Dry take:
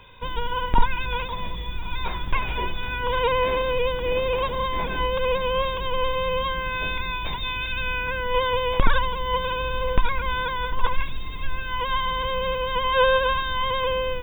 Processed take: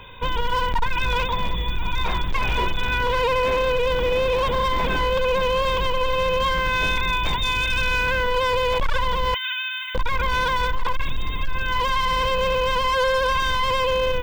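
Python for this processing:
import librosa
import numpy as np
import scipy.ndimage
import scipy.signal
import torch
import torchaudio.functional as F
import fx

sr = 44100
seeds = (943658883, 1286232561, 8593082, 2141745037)

p1 = fx.steep_highpass(x, sr, hz=1500.0, slope=36, at=(9.34, 9.95))
p2 = fx.over_compress(p1, sr, threshold_db=-26.0, ratio=-1.0)
p3 = p1 + F.gain(torch.from_numpy(p2), -1.5).numpy()
y = np.clip(p3, -10.0 ** (-16.5 / 20.0), 10.0 ** (-16.5 / 20.0))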